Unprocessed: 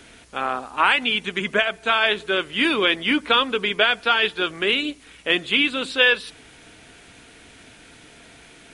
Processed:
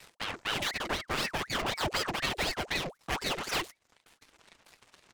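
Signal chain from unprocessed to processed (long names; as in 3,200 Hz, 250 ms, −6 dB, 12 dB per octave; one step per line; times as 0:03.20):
pitch shifter swept by a sawtooth −9 semitones, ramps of 986 ms
high-pass filter 180 Hz 12 dB per octave
noise gate with hold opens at −39 dBFS
reverb reduction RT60 1.5 s
dynamic equaliser 780 Hz, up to −6 dB, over −35 dBFS, Q 0.73
soft clipping −28 dBFS, distortion −6 dB
tempo change 1.7×
half-wave rectification
harmonic generator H 3 −10 dB, 6 −13 dB, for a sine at −28 dBFS
ring modulator whose carrier an LFO sweeps 1,300 Hz, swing 75%, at 4 Hz
level +6 dB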